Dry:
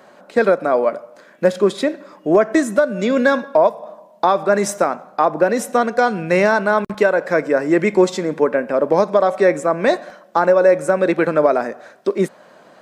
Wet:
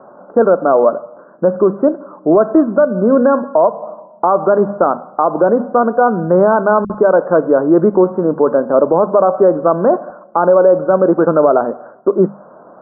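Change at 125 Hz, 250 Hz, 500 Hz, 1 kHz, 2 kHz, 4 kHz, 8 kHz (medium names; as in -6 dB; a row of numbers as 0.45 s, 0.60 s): +5.0 dB, +5.0 dB, +4.5 dB, +4.0 dB, -5.0 dB, under -40 dB, under -40 dB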